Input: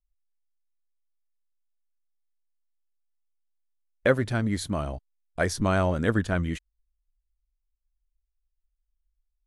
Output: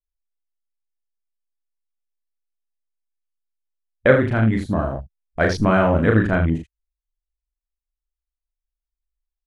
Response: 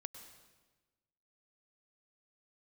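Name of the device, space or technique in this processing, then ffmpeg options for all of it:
slapback doubling: -filter_complex "[0:a]asplit=3[link_01][link_02][link_03];[link_02]adelay=37,volume=-3.5dB[link_04];[link_03]adelay=81,volume=-8.5dB[link_05];[link_01][link_04][link_05]amix=inputs=3:normalize=0,afwtdn=0.0141,highshelf=frequency=8100:gain=-6,volume=6dB"

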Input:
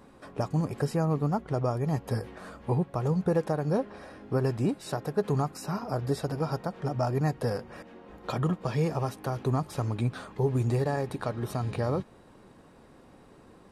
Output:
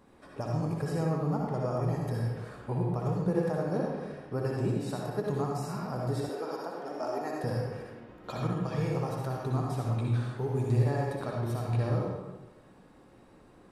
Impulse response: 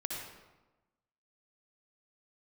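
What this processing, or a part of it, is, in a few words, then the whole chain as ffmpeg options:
bathroom: -filter_complex "[1:a]atrim=start_sample=2205[link_01];[0:a][link_01]afir=irnorm=-1:irlink=0,asettb=1/sr,asplit=3[link_02][link_03][link_04];[link_02]atrim=end=6.294[link_05];[link_03]atrim=start=6.29:end=7.44,asetpts=PTS-STARTPTS,afade=type=in:duration=0.004:curve=qsin,afade=type=out:start_time=1.146:duration=0.004:curve=qsin,highpass=frequency=270:width=0.5412,highpass=frequency=270:width=1.3066[link_06];[link_04]atrim=start=7.436[link_07];[link_05][link_06]acrossfade=duration=0.004:curve1=hsin:curve2=qsin[link_08];[link_08][link_07]acrossfade=duration=0.004:curve1=qsin:curve2=hsin,volume=-4.5dB"

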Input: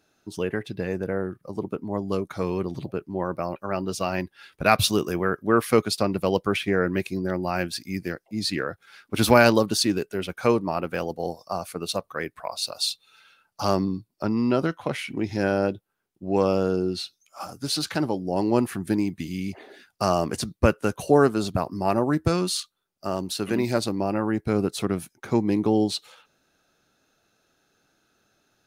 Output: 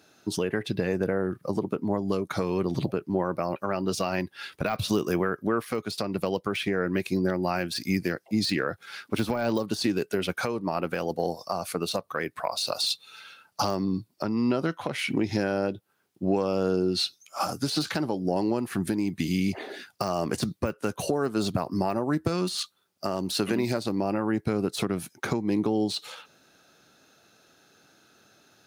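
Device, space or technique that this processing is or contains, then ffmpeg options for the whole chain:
broadcast voice chain: -af "highpass=94,deesser=0.7,acompressor=threshold=-29dB:ratio=5,equalizer=frequency=4400:width_type=o:width=0.77:gain=2,alimiter=limit=-22.5dB:level=0:latency=1:release=271,volume=8dB"

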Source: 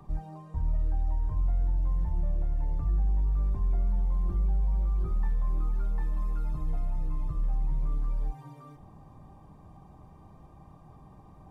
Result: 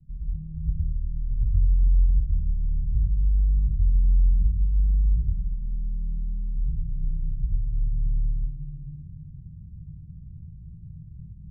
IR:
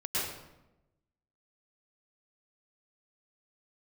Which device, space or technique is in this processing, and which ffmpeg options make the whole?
club heard from the street: -filter_complex "[0:a]alimiter=level_in=4dB:limit=-24dB:level=0:latency=1,volume=-4dB,lowpass=frequency=160:width=0.5412,lowpass=frequency=160:width=1.3066[link_01];[1:a]atrim=start_sample=2205[link_02];[link_01][link_02]afir=irnorm=-1:irlink=0,volume=3.5dB"

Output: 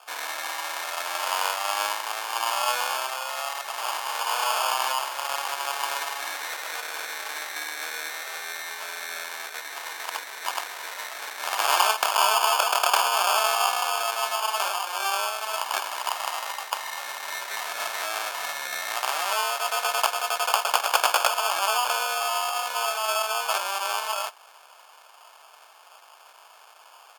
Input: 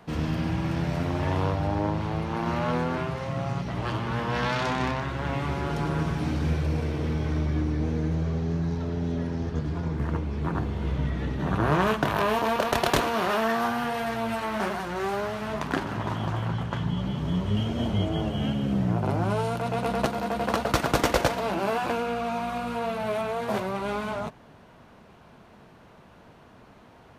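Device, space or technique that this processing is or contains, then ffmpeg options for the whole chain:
crushed at another speed: -af "asetrate=55125,aresample=44100,acrusher=samples=18:mix=1:aa=0.000001,asetrate=35280,aresample=44100,highpass=frequency=780:width=0.5412,highpass=frequency=780:width=1.3066,volume=6.5dB"

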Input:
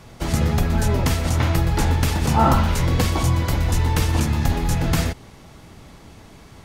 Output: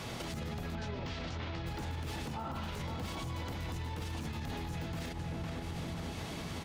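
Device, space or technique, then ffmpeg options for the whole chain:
broadcast voice chain: -filter_complex "[0:a]asettb=1/sr,asplit=3[link_01][link_02][link_03];[link_01]atrim=end=0.754[link_04];[link_02]atrim=start=0.75:end=1.66,asetpts=PTS-STARTPTS,afade=type=in:duration=0.004:curve=qsin,afade=type=out:start_time=0.906:duration=0.004:curve=qsin,lowpass=frequency=5200:width=0.5412,lowpass=frequency=5200:width=1.3066[link_05];[link_03]atrim=start=1.656[link_06];[link_04][link_05]acrossfade=duration=0.004:curve1=hsin:curve2=qsin[link_07];[link_07][link_06]acrossfade=duration=0.004:curve1=qsin:curve2=hsin,highpass=frequency=110:poles=1,asplit=2[link_08][link_09];[link_09]adelay=505,lowpass=frequency=1400:poles=1,volume=-9.5dB,asplit=2[link_10][link_11];[link_11]adelay=505,lowpass=frequency=1400:poles=1,volume=0.39,asplit=2[link_12][link_13];[link_13]adelay=505,lowpass=frequency=1400:poles=1,volume=0.39,asplit=2[link_14][link_15];[link_15]adelay=505,lowpass=frequency=1400:poles=1,volume=0.39[link_16];[link_08][link_10][link_12][link_14][link_16]amix=inputs=5:normalize=0,deesser=0.65,acompressor=threshold=-36dB:ratio=6,equalizer=frequency=3300:width_type=o:width=1.2:gain=5,alimiter=level_in=10.5dB:limit=-24dB:level=0:latency=1:release=47,volume=-10.5dB,volume=3.5dB"

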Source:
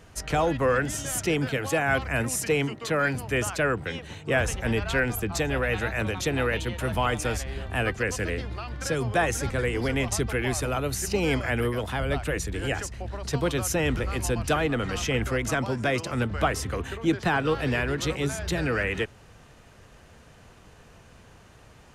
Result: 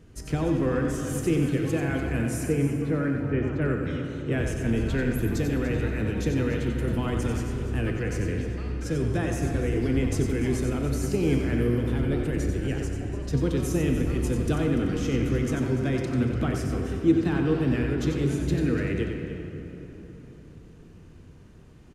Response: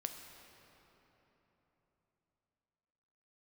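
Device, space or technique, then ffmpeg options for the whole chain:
cave: -filter_complex "[0:a]asettb=1/sr,asplit=3[link_01][link_02][link_03];[link_01]atrim=end=2.464[link_04];[link_02]atrim=start=2.46:end=3.62,asetpts=PTS-STARTPTS,afade=type=in:duration=0.004:curve=qsin,afade=type=out:start_time=1.156:duration=0.004:curve=qsin,lowpass=2000[link_05];[link_03]atrim=start=3.616[link_06];[link_04][link_05]acrossfade=duration=0.004:curve1=hsin:curve2=qsin[link_07];[link_07][link_06]acrossfade=duration=0.004:curve1=qsin:curve2=hsin,lowshelf=frequency=470:width_type=q:width=1.5:gain=10,aecho=1:1:292:0.224[link_08];[1:a]atrim=start_sample=2205[link_09];[link_08][link_09]afir=irnorm=-1:irlink=0,aecho=1:1:92:0.447,volume=-7dB"

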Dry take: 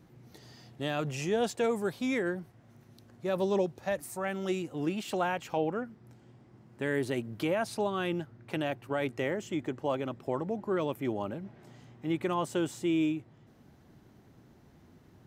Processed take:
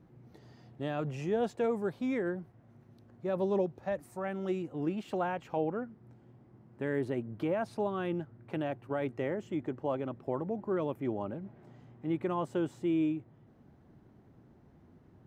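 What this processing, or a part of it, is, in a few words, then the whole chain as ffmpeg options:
through cloth: -filter_complex "[0:a]highshelf=frequency=2600:gain=-16,asplit=3[link_01][link_02][link_03];[link_01]afade=type=out:start_time=7.08:duration=0.02[link_04];[link_02]adynamicequalizer=threshold=0.00178:dfrequency=2200:dqfactor=0.7:tfrequency=2200:tqfactor=0.7:attack=5:release=100:ratio=0.375:range=3.5:mode=cutabove:tftype=highshelf,afade=type=in:start_time=7.08:duration=0.02,afade=type=out:start_time=7.52:duration=0.02[link_05];[link_03]afade=type=in:start_time=7.52:duration=0.02[link_06];[link_04][link_05][link_06]amix=inputs=3:normalize=0,volume=-1dB"

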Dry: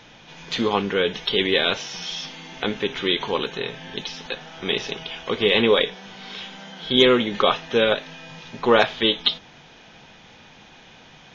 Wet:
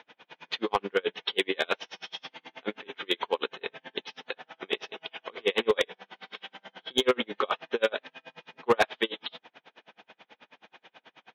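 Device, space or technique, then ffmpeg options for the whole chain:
helicopter radio: -af "highpass=370,lowpass=2900,aeval=exprs='val(0)*pow(10,-37*(0.5-0.5*cos(2*PI*9.3*n/s))/20)':channel_layout=same,asoftclip=type=hard:threshold=-16dB,volume=1.5dB"

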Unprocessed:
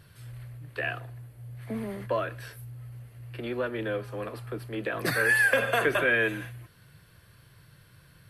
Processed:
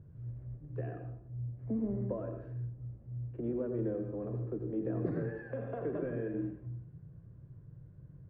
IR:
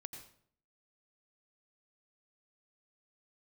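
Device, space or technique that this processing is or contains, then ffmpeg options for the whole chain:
television next door: -filter_complex "[0:a]acompressor=threshold=-28dB:ratio=4,lowpass=370[link_01];[1:a]atrim=start_sample=2205[link_02];[link_01][link_02]afir=irnorm=-1:irlink=0,volume=7dB"

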